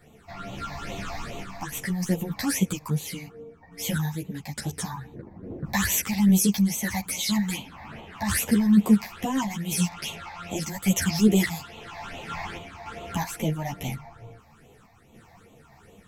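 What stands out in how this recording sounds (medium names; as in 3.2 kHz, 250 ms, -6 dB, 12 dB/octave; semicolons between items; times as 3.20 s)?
phasing stages 8, 2.4 Hz, lowest notch 390–1600 Hz; random-step tremolo; a shimmering, thickened sound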